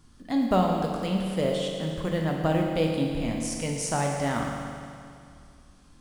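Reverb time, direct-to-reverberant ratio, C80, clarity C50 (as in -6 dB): 2.3 s, -0.5 dB, 3.0 dB, 1.5 dB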